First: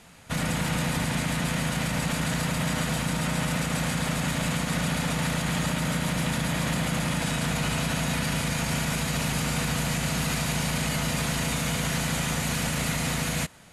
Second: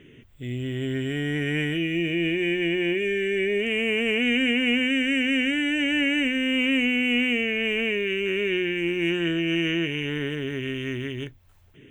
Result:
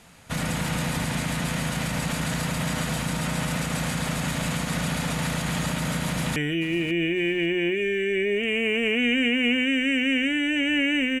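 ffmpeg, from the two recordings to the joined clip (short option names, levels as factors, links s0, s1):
-filter_complex "[0:a]apad=whole_dur=11.2,atrim=end=11.2,atrim=end=6.362[s0];[1:a]atrim=start=1.588:end=6.43[s1];[s0][s1]acrossfade=d=0.004:c1=hsin:c2=hsin,asplit=2[s2][s3];[s3]afade=t=in:st=6.06:d=0.01,afade=t=out:st=6.36:d=0.01,aecho=0:1:550|1100|1650:0.149624|0.0448871|0.0134661[s4];[s2][s4]amix=inputs=2:normalize=0"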